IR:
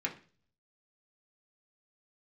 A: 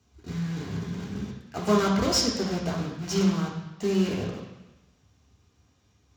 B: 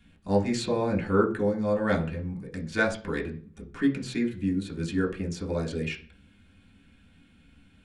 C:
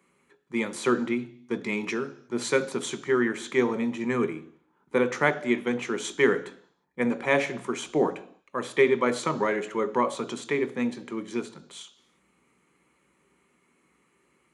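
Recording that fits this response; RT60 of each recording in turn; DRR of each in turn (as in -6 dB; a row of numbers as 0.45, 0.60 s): B; 1.0 s, 0.40 s, not exponential; -3.5, -2.0, 9.0 dB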